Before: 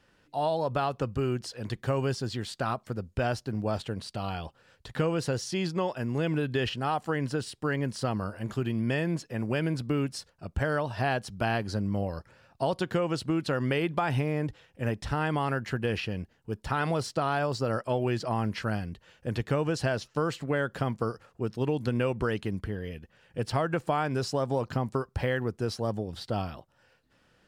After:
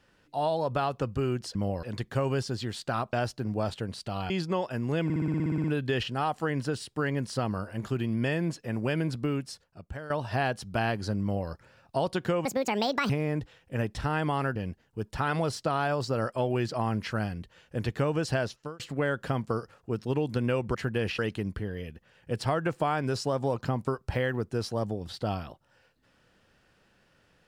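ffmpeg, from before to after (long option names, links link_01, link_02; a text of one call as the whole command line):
ffmpeg -i in.wav -filter_complex "[0:a]asplit=22[link_01][link_02][link_03][link_04][link_05][link_06][link_07][link_08][link_09][link_10][link_11][link_12][link_13][link_14][link_15][link_16][link_17][link_18][link_19][link_20][link_21][link_22];[link_01]atrim=end=1.552[link_23];[link_02]atrim=start=11.878:end=12.162[link_24];[link_03]atrim=start=1.548:end=2.852[link_25];[link_04]atrim=start=3.208:end=4.382[link_26];[link_05]atrim=start=5.558:end=6.362[link_27];[link_06]atrim=start=6.298:end=6.362[link_28];[link_07]atrim=start=6.298:end=6.362[link_29];[link_08]atrim=start=6.298:end=6.362[link_30];[link_09]atrim=start=6.298:end=6.362[link_31];[link_10]atrim=start=6.298:end=6.362[link_32];[link_11]atrim=start=6.298:end=6.362[link_33];[link_12]atrim=start=6.298:end=6.362[link_34];[link_13]atrim=start=6.298:end=6.362[link_35];[link_14]atrim=start=6.298:end=6.362[link_36];[link_15]atrim=start=6.298:end=10.76,asetpts=PTS-STARTPTS,afade=type=out:start_time=3.482:duration=0.98:silence=0.188365[link_37];[link_16]atrim=start=10.76:end=13.114,asetpts=PTS-STARTPTS,afade=type=in:duration=0.004:curve=hsin:silence=0.188365[link_38];[link_17]atrim=start=13.11:end=14.17,asetpts=PTS-STARTPTS,asetrate=72324,aresample=44100[link_39];[link_18]atrim=start=14.166:end=15.632[link_40];[link_19]atrim=start=16.068:end=20.31,asetpts=PTS-STARTPTS,afade=type=out:start_time=3.882:duration=0.36[link_41];[link_20]atrim=start=20.31:end=22.262,asetpts=PTS-STARTPTS,afade=type=in:duration=0.004:curve=hsin[link_42];[link_21]atrim=start=15.628:end=16.072[link_43];[link_22]atrim=start=22.258[link_44];[link_23][link_24]acrossfade=duration=0.004:curve1=hsin:curve2=hsin[link_45];[link_45][link_25]acrossfade=duration=0.004:curve1=hsin:curve2=hsin[link_46];[link_46][link_26]acrossfade=duration=0.004:curve1=hsin:curve2=hsin[link_47];[link_47][link_27]acrossfade=duration=0.004:curve1=hsin:curve2=hsin[link_48];[link_48][link_28]acrossfade=duration=0.004:curve1=hsin:curve2=hsin[link_49];[link_49][link_29]acrossfade=duration=0.004:curve1=hsin:curve2=hsin[link_50];[link_50][link_30]acrossfade=duration=0.004:curve1=hsin:curve2=hsin[link_51];[link_51][link_31]acrossfade=duration=0.004:curve1=hsin:curve2=hsin[link_52];[link_52][link_32]acrossfade=duration=0.004:curve1=hsin:curve2=hsin[link_53];[link_53][link_33]acrossfade=duration=0.004:curve1=hsin:curve2=hsin[link_54];[link_54][link_34]acrossfade=duration=0.004:curve1=hsin:curve2=hsin[link_55];[link_55][link_35]acrossfade=duration=0.004:curve1=hsin:curve2=hsin[link_56];[link_56][link_36]acrossfade=duration=0.004:curve1=hsin:curve2=hsin[link_57];[link_37][link_38]concat=n=2:v=0:a=1[link_58];[link_57][link_58]acrossfade=duration=0.004:curve1=hsin:curve2=hsin[link_59];[link_59][link_39]acrossfade=duration=0.004:curve1=hsin:curve2=hsin[link_60];[link_60][link_40]acrossfade=duration=0.004:curve1=hsin:curve2=hsin[link_61];[link_41][link_42]concat=n=2:v=0:a=1[link_62];[link_61][link_62]acrossfade=duration=0.004:curve1=hsin:curve2=hsin[link_63];[link_63][link_43]acrossfade=duration=0.004:curve1=hsin:curve2=hsin[link_64];[link_64][link_44]acrossfade=duration=0.004:curve1=hsin:curve2=hsin" out.wav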